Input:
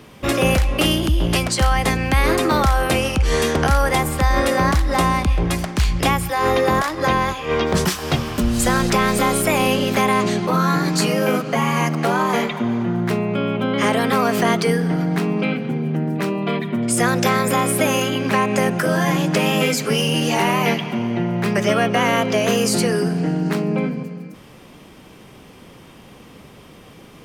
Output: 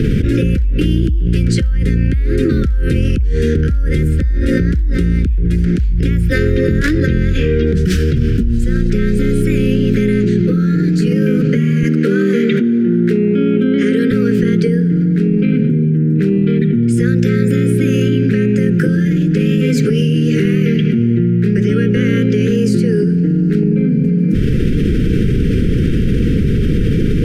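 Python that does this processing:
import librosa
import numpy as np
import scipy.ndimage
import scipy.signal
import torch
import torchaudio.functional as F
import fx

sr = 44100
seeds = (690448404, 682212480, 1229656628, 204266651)

y = fx.highpass(x, sr, hz=200.0, slope=24, at=(11.83, 14.11))
y = scipy.signal.sosfilt(scipy.signal.ellip(3, 1.0, 40, [460.0, 1500.0], 'bandstop', fs=sr, output='sos'), y)
y = fx.tilt_eq(y, sr, slope=-4.0)
y = fx.env_flatten(y, sr, amount_pct=100)
y = y * librosa.db_to_amplitude(-15.0)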